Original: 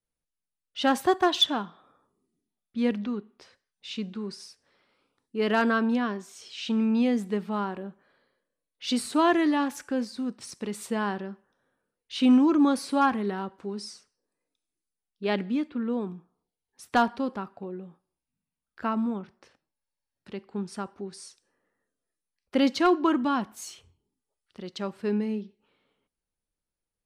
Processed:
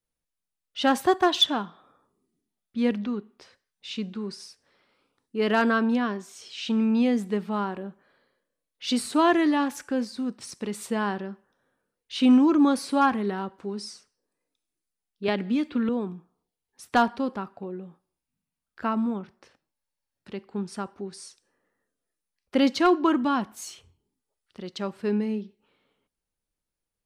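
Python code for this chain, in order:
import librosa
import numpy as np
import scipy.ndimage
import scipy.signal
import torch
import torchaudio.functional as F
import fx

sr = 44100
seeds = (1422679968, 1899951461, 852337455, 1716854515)

y = fx.band_squash(x, sr, depth_pct=100, at=(15.28, 15.89))
y = y * librosa.db_to_amplitude(1.5)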